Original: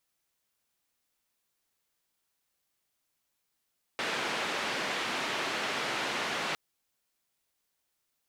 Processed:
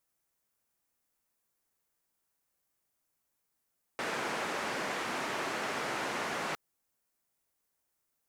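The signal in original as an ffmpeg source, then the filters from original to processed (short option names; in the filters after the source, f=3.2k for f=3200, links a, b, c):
-f lavfi -i "anoisesrc=c=white:d=2.56:r=44100:seed=1,highpass=f=210,lowpass=f=2700,volume=-19.1dB"
-af "equalizer=f=3.5k:w=0.95:g=-8"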